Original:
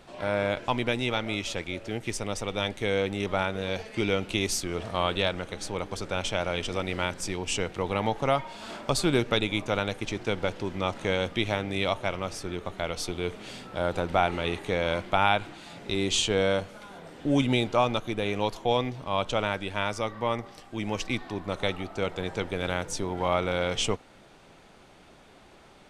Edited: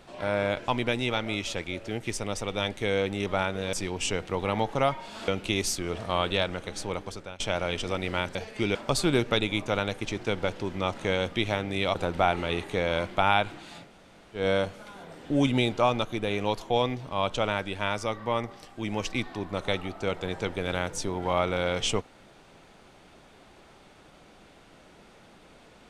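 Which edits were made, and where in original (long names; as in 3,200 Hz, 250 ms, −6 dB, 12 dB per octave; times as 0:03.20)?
0:03.73–0:04.13: swap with 0:07.20–0:08.75
0:05.78–0:06.25: fade out, to −20 dB
0:11.95–0:13.90: remove
0:15.80–0:16.35: fill with room tone, crossfade 0.16 s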